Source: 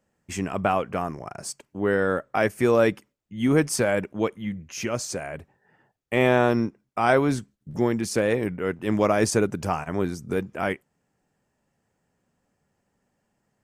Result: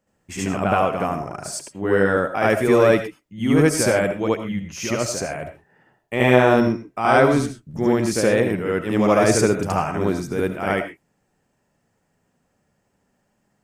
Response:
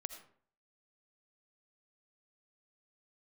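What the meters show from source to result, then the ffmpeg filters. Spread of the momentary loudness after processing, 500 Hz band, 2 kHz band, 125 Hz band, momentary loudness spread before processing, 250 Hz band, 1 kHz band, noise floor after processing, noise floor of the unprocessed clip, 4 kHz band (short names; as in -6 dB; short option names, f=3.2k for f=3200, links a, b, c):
13 LU, +5.0 dB, +5.0 dB, +5.0 dB, 14 LU, +5.0 dB, +5.0 dB, -70 dBFS, -76 dBFS, +5.0 dB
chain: -filter_complex "[0:a]asplit=2[a][b];[1:a]atrim=start_sample=2205,atrim=end_sample=6174,adelay=72[c];[b][c]afir=irnorm=-1:irlink=0,volume=7.5dB[d];[a][d]amix=inputs=2:normalize=0,volume=-1dB"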